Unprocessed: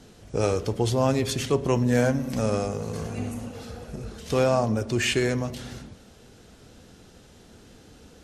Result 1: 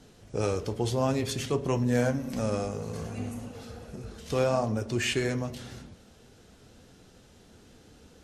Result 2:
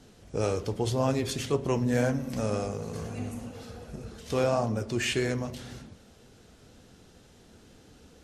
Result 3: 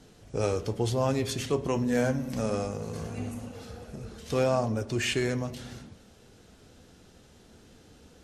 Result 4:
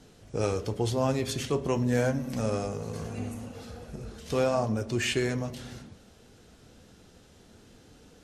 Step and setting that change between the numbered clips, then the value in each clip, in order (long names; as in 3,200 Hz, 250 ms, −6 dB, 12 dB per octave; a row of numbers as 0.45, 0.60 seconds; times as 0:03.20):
flanger, speed: 0.57, 1.9, 0.2, 0.37 Hertz